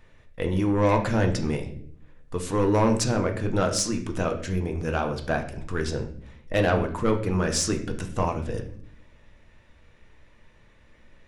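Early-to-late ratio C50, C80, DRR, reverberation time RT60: 10.0 dB, 13.5 dB, 3.5 dB, 0.55 s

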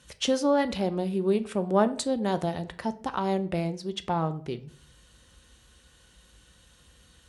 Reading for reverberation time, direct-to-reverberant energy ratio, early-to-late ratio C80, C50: 0.50 s, 9.5 dB, 21.0 dB, 17.0 dB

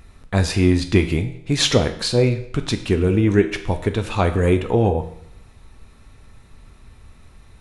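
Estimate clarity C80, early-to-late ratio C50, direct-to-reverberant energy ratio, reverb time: 14.0 dB, 11.0 dB, 7.0 dB, 0.70 s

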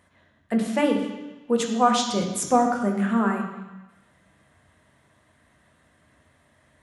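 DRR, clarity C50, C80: 2.0 dB, 5.5 dB, 7.0 dB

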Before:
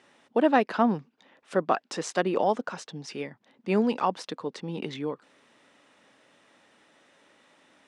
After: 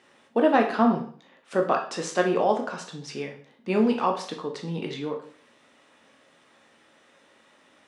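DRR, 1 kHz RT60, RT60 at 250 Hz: 2.0 dB, 0.50 s, 0.50 s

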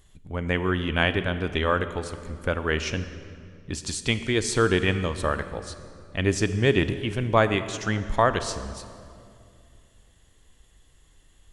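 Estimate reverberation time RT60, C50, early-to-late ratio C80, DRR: 2.4 s, 11.5 dB, 12.5 dB, 11.0 dB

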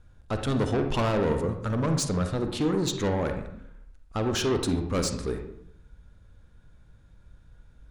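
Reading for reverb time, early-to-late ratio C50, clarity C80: 0.65 s, 7.0 dB, 10.5 dB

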